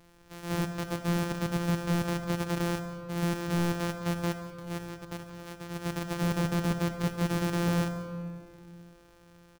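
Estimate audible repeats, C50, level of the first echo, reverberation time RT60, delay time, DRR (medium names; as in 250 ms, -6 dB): 1, 8.0 dB, -16.0 dB, 2.2 s, 180 ms, 7.5 dB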